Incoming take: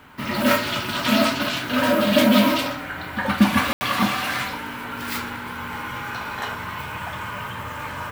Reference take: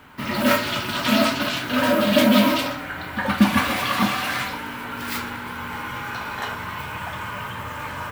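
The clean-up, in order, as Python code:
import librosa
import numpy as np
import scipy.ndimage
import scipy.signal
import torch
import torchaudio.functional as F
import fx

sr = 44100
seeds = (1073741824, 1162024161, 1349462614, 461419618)

y = fx.fix_ambience(x, sr, seeds[0], print_start_s=0.0, print_end_s=0.5, start_s=3.73, end_s=3.81)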